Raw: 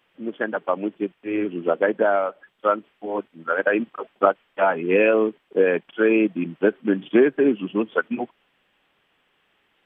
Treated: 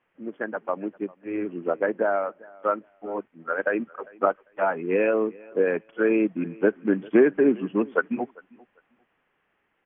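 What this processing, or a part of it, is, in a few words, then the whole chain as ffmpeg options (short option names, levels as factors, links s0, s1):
action camera in a waterproof case: -af "lowpass=f=2300:w=0.5412,lowpass=f=2300:w=1.3066,aecho=1:1:398|796:0.0631|0.0139,dynaudnorm=f=200:g=21:m=2.99,volume=0.562" -ar 24000 -c:a aac -b:a 48k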